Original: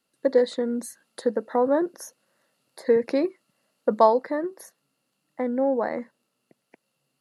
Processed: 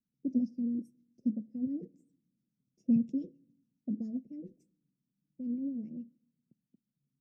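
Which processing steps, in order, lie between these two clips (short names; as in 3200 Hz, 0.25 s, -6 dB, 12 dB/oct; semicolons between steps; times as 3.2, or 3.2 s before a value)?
formant shift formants +5 st; elliptic band-stop 220–5600 Hz, stop band 70 dB; LFO low-pass sine 7.2 Hz 460–1600 Hz; on a send: reverb RT60 0.70 s, pre-delay 3 ms, DRR 23 dB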